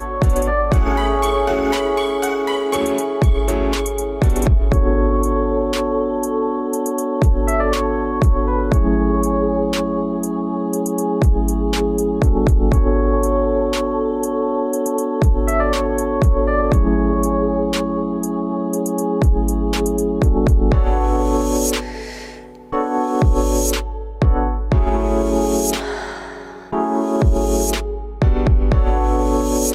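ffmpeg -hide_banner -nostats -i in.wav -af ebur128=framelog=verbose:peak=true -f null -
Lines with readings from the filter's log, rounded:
Integrated loudness:
  I:         -18.3 LUFS
  Threshold: -28.5 LUFS
Loudness range:
  LRA:         1.9 LU
  Threshold: -38.5 LUFS
  LRA low:   -19.6 LUFS
  LRA high:  -17.7 LUFS
True peak:
  Peak:       -6.1 dBFS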